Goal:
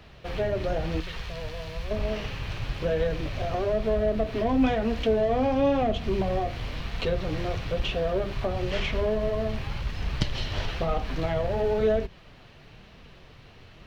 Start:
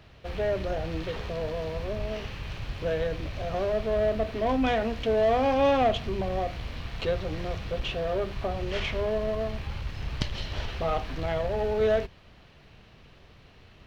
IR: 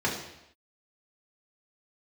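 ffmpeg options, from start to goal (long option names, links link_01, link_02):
-filter_complex "[0:a]asettb=1/sr,asplit=3[link_01][link_02][link_03];[link_01]atrim=end=1.004[link_04];[link_02]atrim=start=1:end=1.91,asetpts=PTS-STARTPTS,afade=type=in:duration=0.004:curve=qsin,afade=type=out:start_time=0.906:duration=0.004:curve=qsin,equalizer=frequency=370:width=0.44:gain=-13[link_05];[link_03]atrim=start=1.906[link_06];[link_04][link_05]acrossfade=duration=0.004:curve1=hsin:curve2=qsin[link_07];[link_07][link_06]acrossfade=duration=0.004:curve1=qsin:curve2=hsin,acrossover=split=440[link_08][link_09];[link_09]acompressor=threshold=-32dB:ratio=5[link_10];[link_08][link_10]amix=inputs=2:normalize=0,flanger=delay=3.8:depth=5.2:regen=-46:speed=1:shape=triangular,volume=7.5dB"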